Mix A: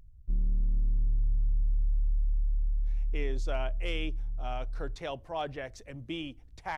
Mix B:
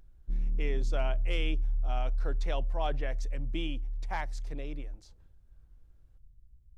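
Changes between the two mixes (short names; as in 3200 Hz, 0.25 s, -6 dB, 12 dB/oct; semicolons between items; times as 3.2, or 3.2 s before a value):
speech: entry -2.55 s; background: add bell 91 Hz -8.5 dB 1.6 oct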